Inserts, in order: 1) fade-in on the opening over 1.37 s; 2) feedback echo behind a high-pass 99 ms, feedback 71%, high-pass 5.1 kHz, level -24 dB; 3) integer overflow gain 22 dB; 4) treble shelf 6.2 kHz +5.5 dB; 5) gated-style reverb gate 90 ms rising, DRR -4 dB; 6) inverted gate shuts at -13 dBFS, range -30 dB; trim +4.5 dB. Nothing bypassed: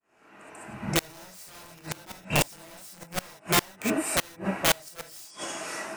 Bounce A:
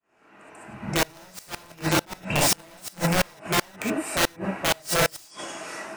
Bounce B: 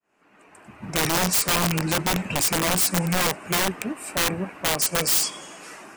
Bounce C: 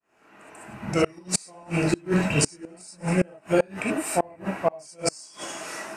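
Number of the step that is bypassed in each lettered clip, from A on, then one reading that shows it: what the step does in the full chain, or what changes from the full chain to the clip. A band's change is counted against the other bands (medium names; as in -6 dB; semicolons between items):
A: 4, crest factor change -4.0 dB; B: 5, momentary loudness spread change -10 LU; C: 3, crest factor change -5.0 dB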